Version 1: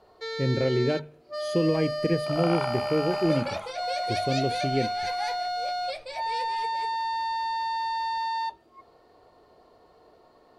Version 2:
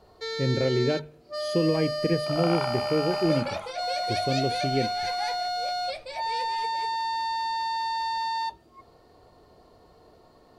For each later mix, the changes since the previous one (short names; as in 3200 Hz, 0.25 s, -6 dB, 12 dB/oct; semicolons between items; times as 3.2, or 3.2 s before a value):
first sound: add tone controls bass +9 dB, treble +6 dB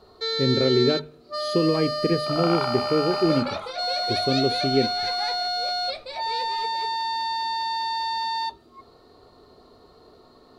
second sound: add high shelf 8100 Hz -11 dB; master: add thirty-one-band EQ 250 Hz +7 dB, 400 Hz +7 dB, 1250 Hz +9 dB, 4000 Hz +11 dB